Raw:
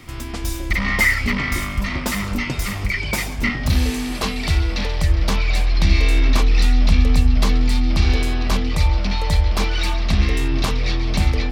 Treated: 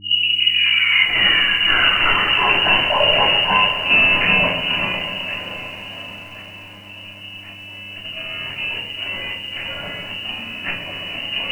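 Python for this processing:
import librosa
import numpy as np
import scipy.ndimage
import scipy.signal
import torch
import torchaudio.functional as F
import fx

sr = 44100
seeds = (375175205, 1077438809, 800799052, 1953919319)

y = fx.tape_start_head(x, sr, length_s=2.63)
y = fx.peak_eq(y, sr, hz=300.0, db=-2.5, octaves=0.33)
y = fx.hum_notches(y, sr, base_hz=60, count=5)
y = fx.over_compress(y, sr, threshold_db=-23.0, ratio=-0.5)
y = fx.freq_invert(y, sr, carrier_hz=2900)
y = fx.echo_diffused(y, sr, ms=695, feedback_pct=56, wet_db=-14)
y = fx.room_shoebox(y, sr, seeds[0], volume_m3=340.0, walls='furnished', distance_m=3.1)
y = fx.dmg_buzz(y, sr, base_hz=100.0, harmonics=3, level_db=-44.0, tilt_db=-5, odd_only=False)
y = fx.echo_crushed(y, sr, ms=133, feedback_pct=80, bits=7, wet_db=-14)
y = y * librosa.db_to_amplitude(-1.5)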